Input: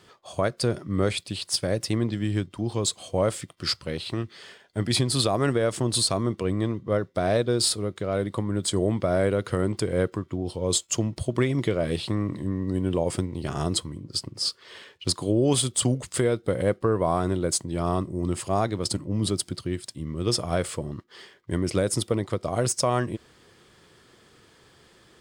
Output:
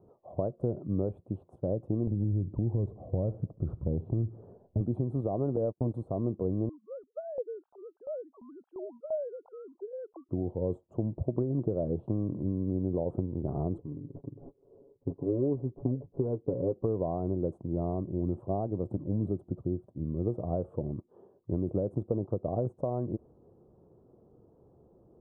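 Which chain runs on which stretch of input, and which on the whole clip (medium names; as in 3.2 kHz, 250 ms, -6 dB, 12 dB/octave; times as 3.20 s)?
2.07–4.81 s: RIAA curve playback + compression, threshold -22 dBFS + feedback delay 71 ms, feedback 51%, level -21 dB
5.56–5.98 s: gate -29 dBFS, range -40 dB + band-stop 370 Hz, Q 11
6.69–10.29 s: formants replaced by sine waves + LFO band-pass saw up 2.9 Hz 840–2400 Hz
13.78–16.76 s: median filter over 41 samples + rippled Chebyshev low-pass 1.5 kHz, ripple 6 dB + comb 7.2 ms, depth 62%
whole clip: compression, threshold -24 dBFS; inverse Chebyshev low-pass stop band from 1.9 kHz, stop band 50 dB; trim -1 dB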